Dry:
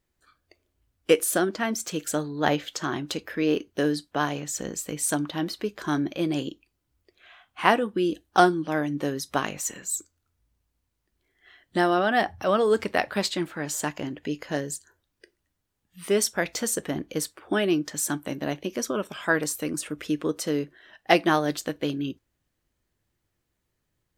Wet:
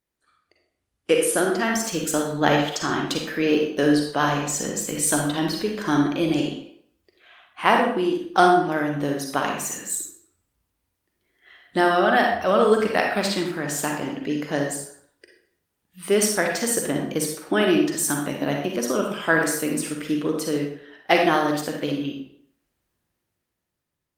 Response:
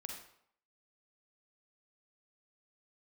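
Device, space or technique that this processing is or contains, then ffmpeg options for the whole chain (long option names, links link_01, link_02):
far-field microphone of a smart speaker: -filter_complex "[1:a]atrim=start_sample=2205[link_01];[0:a][link_01]afir=irnorm=-1:irlink=0,highpass=frequency=130:poles=1,dynaudnorm=framelen=260:gausssize=9:maxgain=8dB,volume=1dB" -ar 48000 -c:a libopus -b:a 32k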